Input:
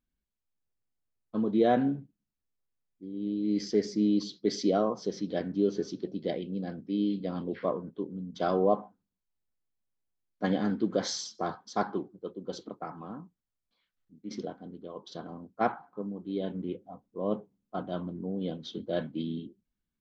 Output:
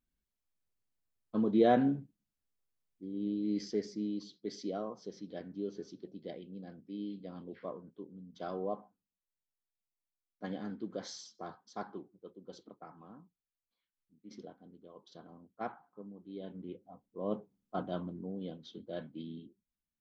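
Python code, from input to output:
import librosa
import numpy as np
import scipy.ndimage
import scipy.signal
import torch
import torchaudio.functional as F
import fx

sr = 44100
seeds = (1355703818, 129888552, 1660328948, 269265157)

y = fx.gain(x, sr, db=fx.line((3.18, -1.5), (4.17, -12.0), (16.31, -12.0), (17.8, -1.5), (18.64, -10.0)))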